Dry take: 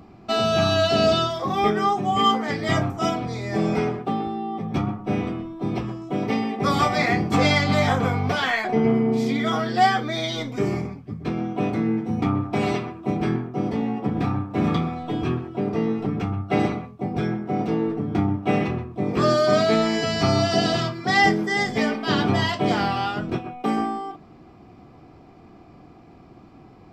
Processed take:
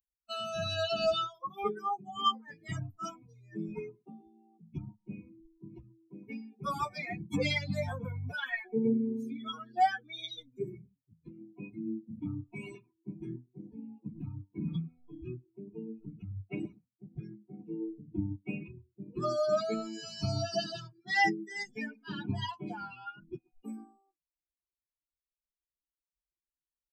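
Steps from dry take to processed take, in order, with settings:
spectral dynamics exaggerated over time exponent 3
level −5 dB

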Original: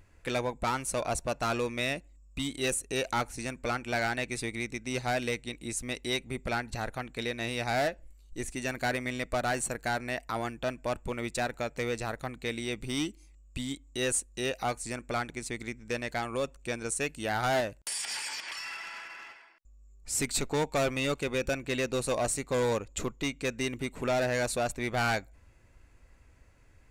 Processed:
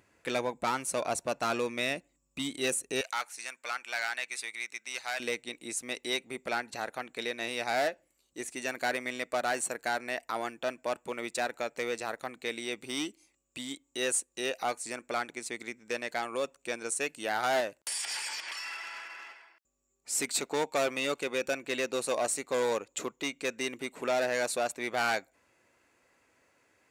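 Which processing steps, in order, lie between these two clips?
high-pass filter 200 Hz 12 dB per octave, from 0:03.01 1,100 Hz, from 0:05.20 320 Hz

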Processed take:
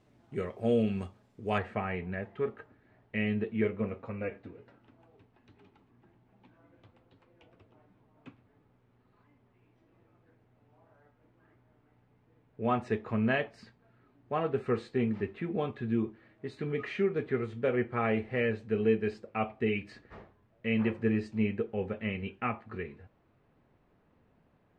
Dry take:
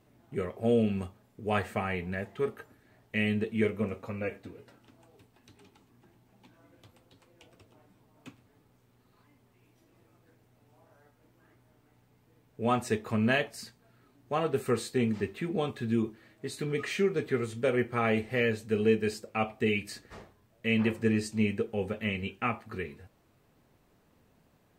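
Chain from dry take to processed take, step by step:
low-pass filter 7,000 Hz 12 dB per octave, from 0:01.58 2,400 Hz
level −1.5 dB

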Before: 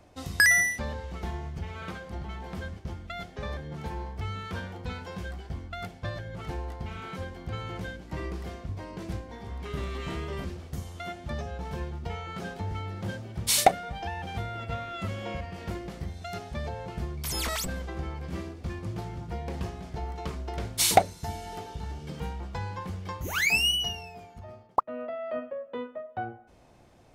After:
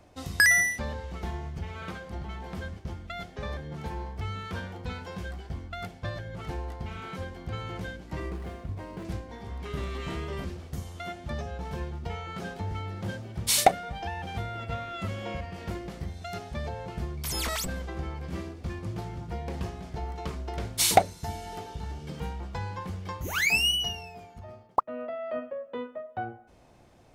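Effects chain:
0:08.20–0:09.05: running median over 9 samples

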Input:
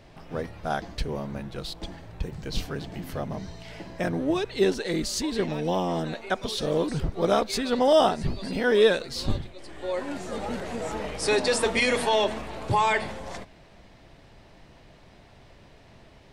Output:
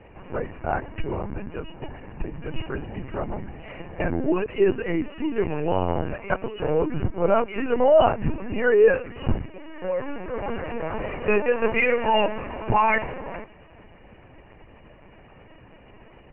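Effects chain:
linear-phase brick-wall low-pass 3,000 Hz
linear-prediction vocoder at 8 kHz pitch kept
level +3 dB

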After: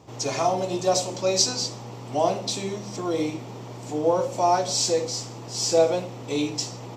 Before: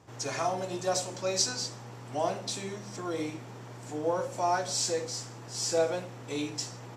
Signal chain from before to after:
graphic EQ with 15 bands 100 Hz −4 dB, 1,600 Hz −11 dB, 10,000 Hz −9 dB
level +8.5 dB

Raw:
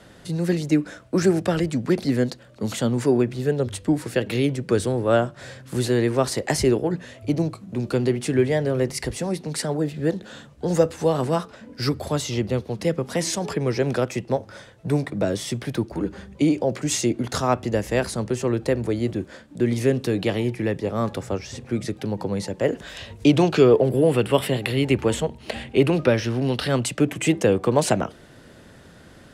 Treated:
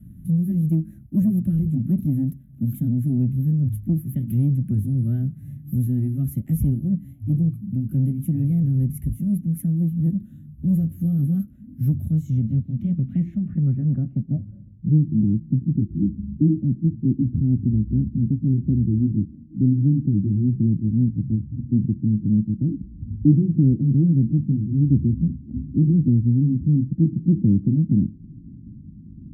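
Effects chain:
pitch shifter swept by a sawtooth +2 semitones, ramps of 1,438 ms
inverse Chebyshev band-stop filter 420–9,200 Hz, stop band 40 dB
in parallel at −2 dB: brickwall limiter −27.5 dBFS, peak gain reduction 11.5 dB
on the sum: harmonic generator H 5 −33 dB, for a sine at −14 dBFS
low-pass filter sweep 11,000 Hz → 330 Hz, 0:11.85–0:15.02
level +5 dB

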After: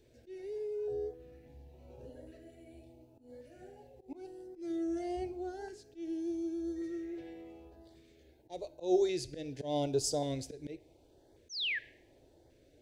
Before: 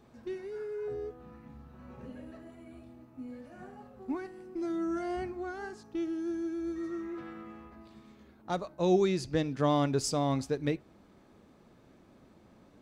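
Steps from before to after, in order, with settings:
phaser with its sweep stopped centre 490 Hz, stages 4
sound drawn into the spectrogram fall, 0:11.49–0:11.79, 1,600–6,600 Hz −33 dBFS
volume swells 157 ms
auto-filter notch saw up 0.88 Hz 740–2,700 Hz
coupled-rooms reverb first 0.63 s, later 1.6 s, from −23 dB, DRR 16 dB

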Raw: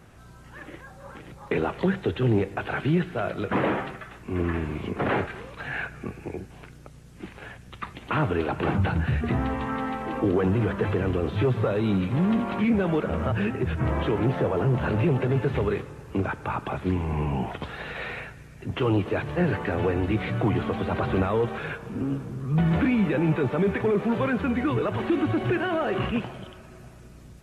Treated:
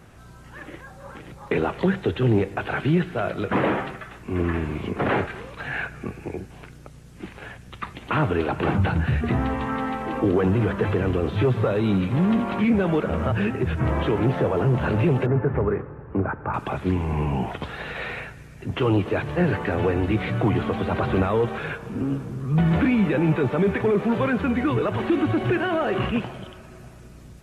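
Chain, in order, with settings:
0:15.26–0:16.54: low-pass filter 1,700 Hz 24 dB per octave
level +2.5 dB

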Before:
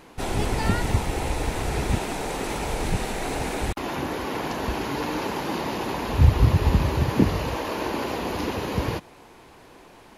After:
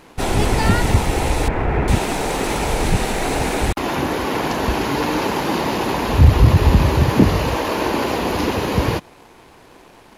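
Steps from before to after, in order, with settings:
0:01.48–0:01.88: low-pass filter 2,300 Hz 24 dB per octave
leveller curve on the samples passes 1
level +4 dB

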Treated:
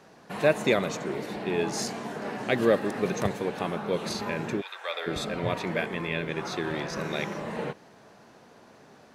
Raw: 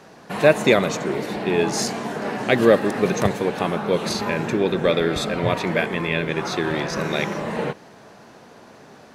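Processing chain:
0:04.60–0:05.06: high-pass filter 1,200 Hz → 540 Hz 24 dB per octave
level −7.5 dB

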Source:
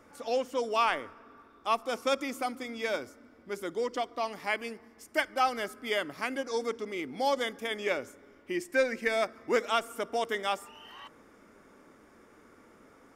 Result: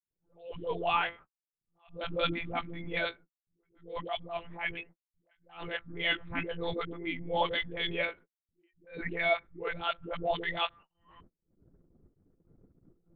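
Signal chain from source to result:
spectral dynamics exaggerated over time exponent 1.5
brickwall limiter −23.5 dBFS, peak gain reduction 8 dB
high-shelf EQ 2,400 Hz +6.5 dB
one-pitch LPC vocoder at 8 kHz 170 Hz
upward compression, threshold −38 dBFS
all-pass dispersion highs, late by 133 ms, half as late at 310 Hz
noise gate −53 dBFS, range −60 dB
low-pass that shuts in the quiet parts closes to 380 Hz, open at −30.5 dBFS
level that may rise only so fast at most 150 dB per second
level +3.5 dB

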